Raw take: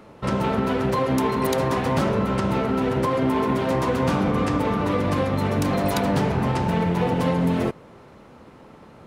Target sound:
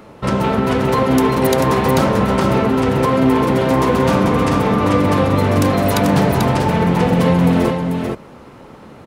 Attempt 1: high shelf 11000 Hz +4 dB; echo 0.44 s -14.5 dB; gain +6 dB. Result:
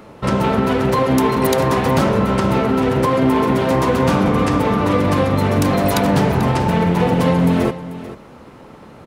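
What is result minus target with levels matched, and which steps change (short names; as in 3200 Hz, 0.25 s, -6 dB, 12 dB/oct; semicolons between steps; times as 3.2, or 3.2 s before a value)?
echo-to-direct -10 dB
change: echo 0.44 s -4.5 dB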